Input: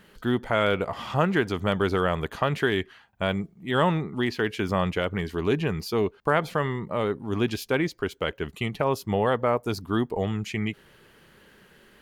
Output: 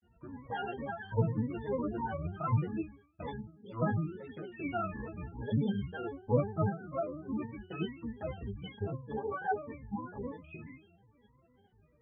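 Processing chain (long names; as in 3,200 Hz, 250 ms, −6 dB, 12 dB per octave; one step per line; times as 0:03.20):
resonances in every octave D, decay 0.47 s
granular cloud 100 ms, grains 20 per second, spray 21 ms, pitch spread up and down by 7 semitones
gate on every frequency bin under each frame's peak −30 dB strong
level +7.5 dB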